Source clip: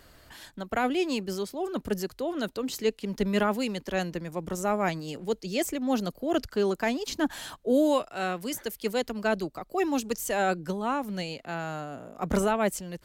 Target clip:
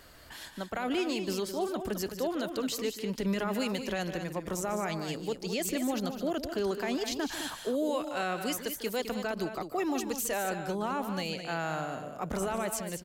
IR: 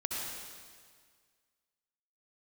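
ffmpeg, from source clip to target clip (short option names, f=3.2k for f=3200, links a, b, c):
-af "lowshelf=f=410:g=-4,alimiter=level_in=1.5dB:limit=-24dB:level=0:latency=1:release=58,volume=-1.5dB,aecho=1:1:148.7|209.9:0.251|0.355,volume=2dB"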